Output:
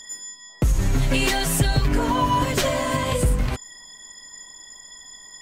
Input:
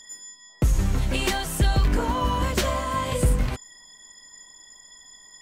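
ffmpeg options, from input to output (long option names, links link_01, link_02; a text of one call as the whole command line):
ffmpeg -i in.wav -filter_complex "[0:a]alimiter=limit=-17.5dB:level=0:latency=1:release=191,asettb=1/sr,asplit=3[link_01][link_02][link_03];[link_01]atrim=end=0.814[link_04];[link_02]atrim=start=0.81:end=3.03,asetpts=PTS-STARTPTS,afade=type=in:duration=0.004:curve=qsin,afade=type=out:start_time=2.216:duration=0.004:curve=qsin,aecho=1:1:7.2:0.8,atrim=end_sample=97902[link_05];[link_03]atrim=start=3.026[link_06];[link_04][link_05]acrossfade=duration=0.004:curve1=hsin:curve2=qsin[link_07];[link_07][link_06]acrossfade=duration=0.004:curve1=qsin:curve2=hsin,volume=5.5dB" out.wav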